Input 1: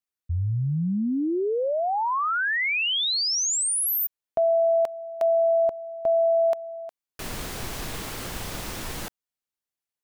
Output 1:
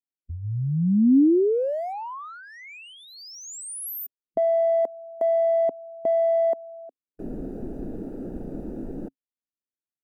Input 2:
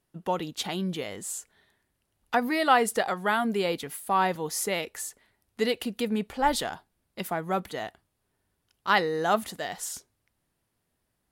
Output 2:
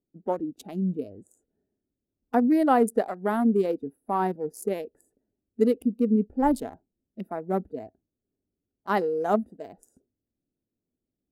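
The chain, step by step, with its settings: local Wiener filter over 41 samples; spectral noise reduction 10 dB; FFT filter 140 Hz 0 dB, 270 Hz +11 dB, 3.4 kHz -15 dB, 11 kHz -1 dB

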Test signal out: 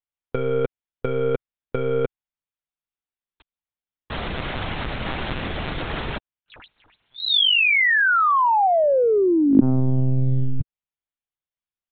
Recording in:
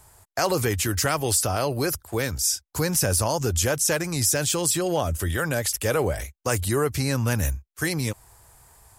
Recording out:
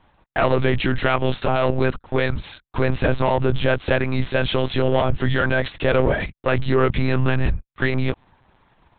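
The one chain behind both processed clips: waveshaping leveller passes 2; monotone LPC vocoder at 8 kHz 130 Hz

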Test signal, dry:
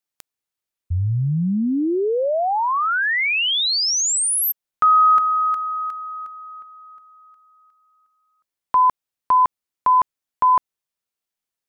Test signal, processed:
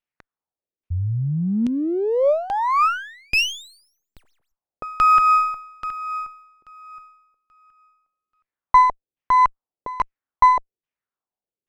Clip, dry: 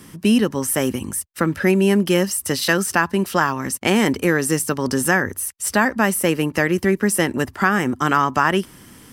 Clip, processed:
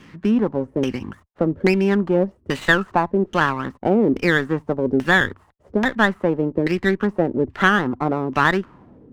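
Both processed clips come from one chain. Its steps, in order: LFO low-pass saw down 1.2 Hz 340–3100 Hz; sliding maximum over 5 samples; trim -2.5 dB

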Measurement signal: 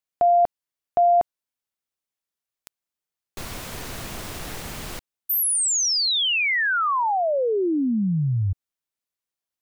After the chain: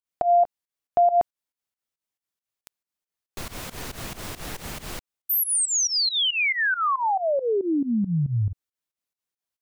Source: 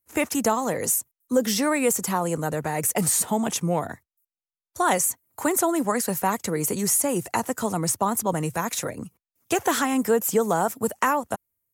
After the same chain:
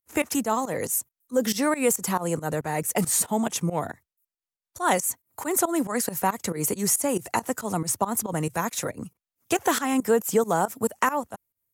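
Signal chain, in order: volume shaper 138 bpm, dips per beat 2, -19 dB, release 129 ms

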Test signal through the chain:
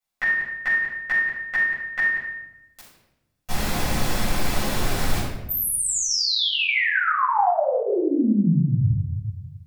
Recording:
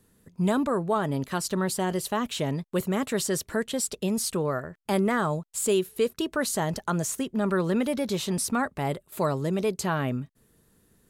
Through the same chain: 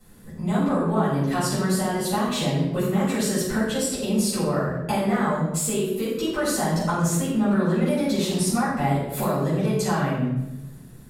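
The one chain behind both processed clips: compression 6:1, threshold -34 dBFS; simulated room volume 380 m³, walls mixed, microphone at 6.8 m; trim -2 dB

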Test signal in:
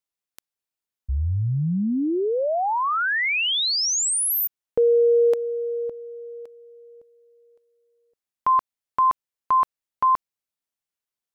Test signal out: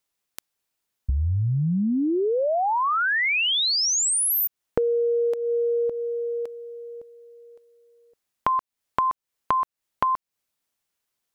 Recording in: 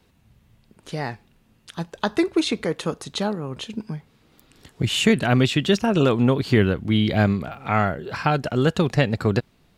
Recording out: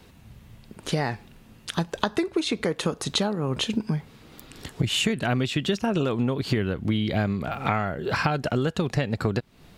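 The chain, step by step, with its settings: compression 12:1, threshold -30 dBFS; trim +9 dB

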